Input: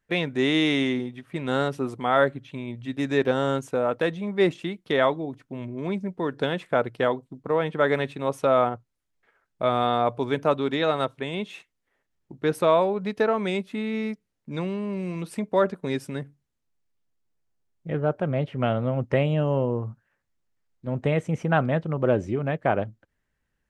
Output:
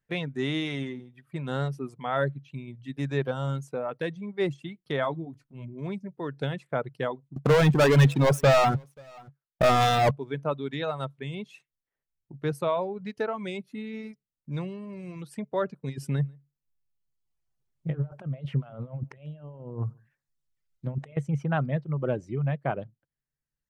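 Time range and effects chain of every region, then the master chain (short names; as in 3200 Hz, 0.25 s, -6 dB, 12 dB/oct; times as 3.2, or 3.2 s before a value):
5.03–5.64 transient shaper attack -8 dB, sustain +3 dB + doubler 18 ms -11 dB
7.36–10.11 sample leveller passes 5 + echo 0.533 s -21 dB
15.88–21.17 negative-ratio compressor -30 dBFS, ratio -0.5 + echo 0.143 s -18.5 dB
whole clip: reverb removal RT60 1.3 s; bell 140 Hz +13.5 dB 0.35 oct; gain -6.5 dB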